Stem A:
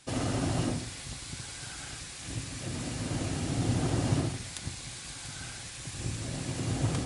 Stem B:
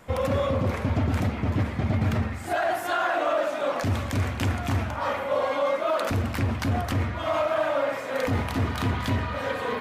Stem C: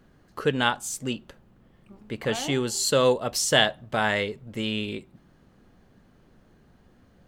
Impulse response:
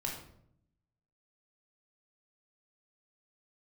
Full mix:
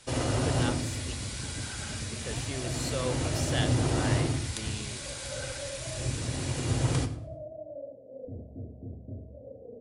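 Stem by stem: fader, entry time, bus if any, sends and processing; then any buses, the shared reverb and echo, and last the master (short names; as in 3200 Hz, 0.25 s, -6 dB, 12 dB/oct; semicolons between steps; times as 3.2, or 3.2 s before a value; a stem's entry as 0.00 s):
-1.0 dB, 0.00 s, send -3.5 dB, echo send -19 dB, bell 180 Hz -7 dB 0.6 oct
-16.5 dB, 0.00 s, send -13.5 dB, no echo send, steep low-pass 660 Hz 72 dB/oct
-13.5 dB, 0.00 s, no send, no echo send, dry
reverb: on, RT60 0.70 s, pre-delay 15 ms
echo: feedback echo 0.103 s, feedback 32%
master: dry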